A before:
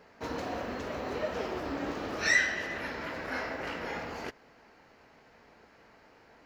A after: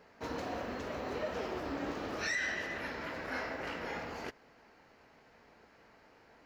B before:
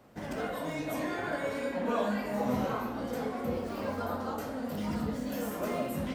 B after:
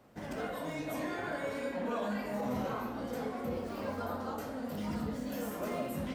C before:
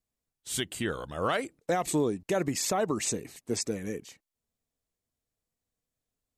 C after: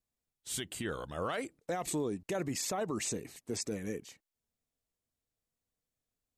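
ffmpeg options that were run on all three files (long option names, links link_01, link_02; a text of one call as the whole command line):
ffmpeg -i in.wav -af "alimiter=limit=-23.5dB:level=0:latency=1:release=20,volume=-3dB" out.wav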